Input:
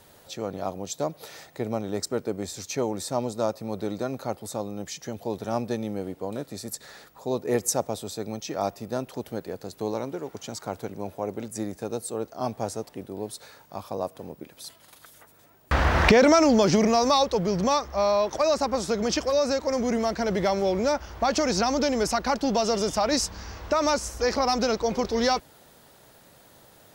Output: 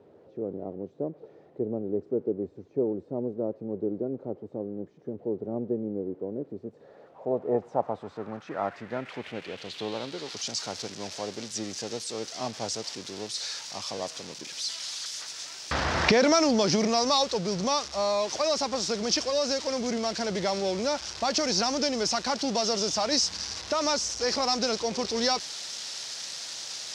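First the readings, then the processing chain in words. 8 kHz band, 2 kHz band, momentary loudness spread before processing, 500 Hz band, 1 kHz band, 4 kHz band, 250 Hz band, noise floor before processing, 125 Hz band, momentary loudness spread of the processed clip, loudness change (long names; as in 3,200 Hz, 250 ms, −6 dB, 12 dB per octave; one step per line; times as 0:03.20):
+1.0 dB, −3.0 dB, 15 LU, −4.0 dB, −4.0 dB, +4.0 dB, −4.0 dB, −55 dBFS, −6.5 dB, 12 LU, −3.0 dB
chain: spike at every zero crossing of −20 dBFS
low-pass filter sweep 400 Hz → 5,400 Hz, 0:06.55–0:10.53
band-pass filter 100–7,000 Hz
level −4.5 dB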